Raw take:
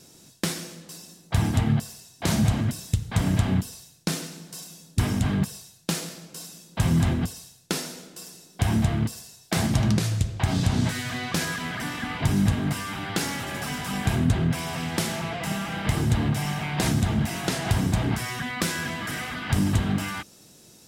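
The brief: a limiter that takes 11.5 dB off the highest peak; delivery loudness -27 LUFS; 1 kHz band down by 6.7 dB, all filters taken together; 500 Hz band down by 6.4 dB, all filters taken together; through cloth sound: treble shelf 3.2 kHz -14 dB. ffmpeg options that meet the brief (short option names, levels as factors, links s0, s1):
-af "equalizer=f=500:t=o:g=-7.5,equalizer=f=1000:t=o:g=-4.5,alimiter=limit=0.0794:level=0:latency=1,highshelf=f=3200:g=-14,volume=2"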